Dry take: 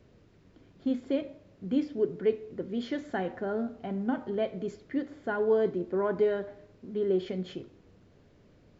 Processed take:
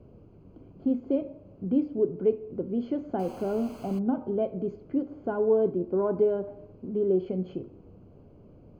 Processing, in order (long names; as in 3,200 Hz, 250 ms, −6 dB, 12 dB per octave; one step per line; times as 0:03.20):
in parallel at −0.5 dB: downward compressor, threshold −41 dBFS, peak gain reduction 19 dB
0:03.19–0:03.99: on the sum: bit-depth reduction 6 bits, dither triangular
moving average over 24 samples
level +2 dB